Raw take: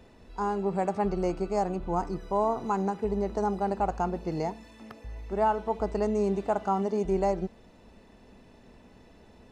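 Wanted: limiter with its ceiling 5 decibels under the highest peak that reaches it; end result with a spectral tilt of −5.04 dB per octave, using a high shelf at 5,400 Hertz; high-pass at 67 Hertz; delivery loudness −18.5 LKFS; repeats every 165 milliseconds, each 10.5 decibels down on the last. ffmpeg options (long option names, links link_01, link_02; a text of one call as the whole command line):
ffmpeg -i in.wav -af "highpass=67,highshelf=frequency=5400:gain=8,alimiter=limit=-19.5dB:level=0:latency=1,aecho=1:1:165|330|495:0.299|0.0896|0.0269,volume=12dB" out.wav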